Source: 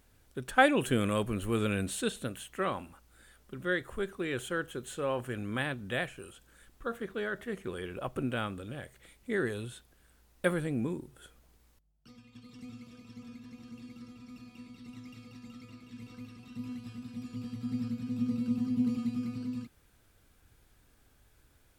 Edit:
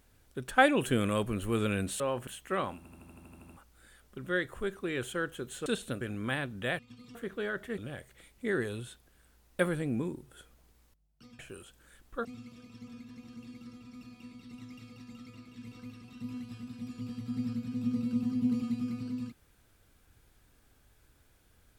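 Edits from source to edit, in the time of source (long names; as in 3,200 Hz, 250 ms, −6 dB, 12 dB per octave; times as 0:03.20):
0:02.00–0:02.35: swap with 0:05.02–0:05.29
0:02.85: stutter 0.08 s, 10 plays
0:06.07–0:06.93: swap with 0:12.24–0:12.60
0:07.56–0:08.63: remove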